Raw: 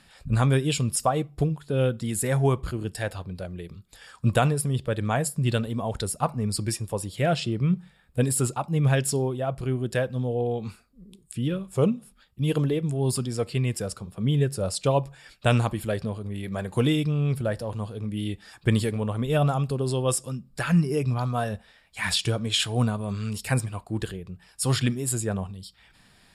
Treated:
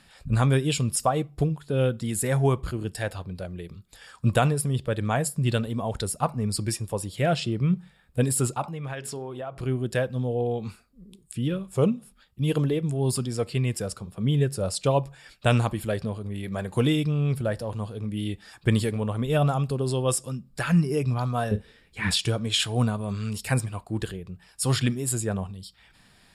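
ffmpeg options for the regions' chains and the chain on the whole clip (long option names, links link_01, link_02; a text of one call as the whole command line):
ffmpeg -i in.wav -filter_complex "[0:a]asettb=1/sr,asplit=3[link_01][link_02][link_03];[link_01]atrim=end=8.634[link_04];[link_02]atrim=start=8.63:end=9.61,asetpts=PTS-STARTPTS,afade=type=in:duration=0.004:curve=qsin,afade=type=out:start_time=0.976:duration=0.004:curve=qsin,equalizer=frequency=1300:width=0.33:gain=11,bandreject=frequency=60:width_type=h:width=6,bandreject=frequency=120:width_type=h:width=6,bandreject=frequency=180:width_type=h:width=6,bandreject=frequency=240:width_type=h:width=6,bandreject=frequency=300:width_type=h:width=6,bandreject=frequency=360:width_type=h:width=6,bandreject=frequency=420:width_type=h:width=6,acompressor=threshold=-34dB:ratio=4:attack=3.2:release=140:knee=1:detection=peak[link_05];[link_03]atrim=start=9.606[link_06];[link_04][link_05]acrossfade=duration=0.004:curve1=hsin:curve2=qsin[link_07];[link_07][link_06]acrossfade=duration=0.004:curve1=qsin:curve2=hsin,asettb=1/sr,asplit=3[link_08][link_09][link_10];[link_08]atrim=end=21.514[link_11];[link_09]atrim=start=21.51:end=22.11,asetpts=PTS-STARTPTS,afade=type=in:duration=0.004:curve=qsin,afade=type=out:start_time=0.596:duration=0.004:curve=qsin,acrossover=split=3500[link_12][link_13];[link_13]acompressor=threshold=-56dB:ratio=4:attack=1:release=60[link_14];[link_12][link_14]amix=inputs=2:normalize=0,lowshelf=frequency=530:width_type=q:width=3:gain=7.5,asplit=2[link_15][link_16];[link_16]adelay=38,volume=-13.5dB[link_17];[link_15][link_17]amix=inputs=2:normalize=0,atrim=end_sample=26460[link_18];[link_10]atrim=start=22.106[link_19];[link_11][link_18]acrossfade=duration=0.004:curve1=hsin:curve2=qsin[link_20];[link_20][link_19]acrossfade=duration=0.004:curve1=qsin:curve2=hsin" out.wav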